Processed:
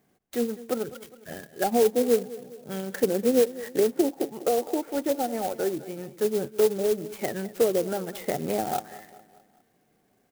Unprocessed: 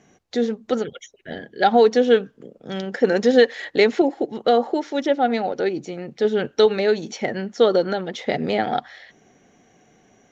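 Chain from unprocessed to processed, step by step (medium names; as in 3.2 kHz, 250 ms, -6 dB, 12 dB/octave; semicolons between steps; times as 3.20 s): spectral noise reduction 7 dB; low-pass that closes with the level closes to 570 Hz, closed at -15.5 dBFS; feedback delay 205 ms, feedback 49%, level -17 dB; sampling jitter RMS 0.063 ms; trim -4.5 dB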